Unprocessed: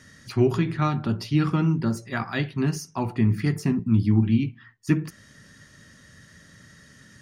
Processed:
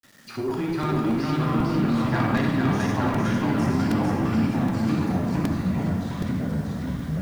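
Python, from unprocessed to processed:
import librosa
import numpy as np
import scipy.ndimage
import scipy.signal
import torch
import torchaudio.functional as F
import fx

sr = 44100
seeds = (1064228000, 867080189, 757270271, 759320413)

y = scipy.signal.sosfilt(scipy.signal.butter(2, 200.0, 'highpass', fs=sr, output='sos'), x)
y = fx.high_shelf(y, sr, hz=2300.0, db=-7.0)
y = fx.level_steps(y, sr, step_db=16)
y = fx.rev_schroeder(y, sr, rt60_s=0.86, comb_ms=27, drr_db=0.0)
y = fx.granulator(y, sr, seeds[0], grain_ms=100.0, per_s=20.0, spray_ms=15.0, spread_st=0)
y = 10.0 ** (-29.0 / 20.0) * np.tanh(y / 10.0 ** (-29.0 / 20.0))
y = fx.echo_feedback(y, sr, ms=452, feedback_pct=51, wet_db=-3)
y = fx.echo_pitch(y, sr, ms=468, semitones=-3, count=3, db_per_echo=-3.0)
y = fx.quant_dither(y, sr, seeds[1], bits=10, dither='none')
y = fx.buffer_crackle(y, sr, first_s=0.83, period_s=0.77, block=128, kind='repeat')
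y = y * 10.0 ** (8.0 / 20.0)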